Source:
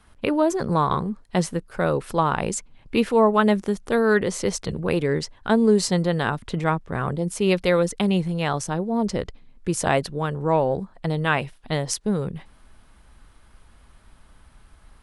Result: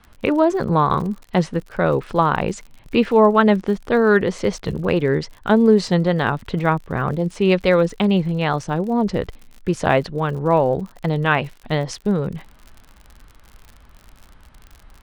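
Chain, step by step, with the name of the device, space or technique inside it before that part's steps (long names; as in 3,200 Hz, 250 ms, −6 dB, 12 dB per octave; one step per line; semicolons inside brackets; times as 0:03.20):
lo-fi chain (low-pass filter 3,700 Hz 12 dB per octave; tape wow and flutter; surface crackle 60 per second −36 dBFS)
level +4 dB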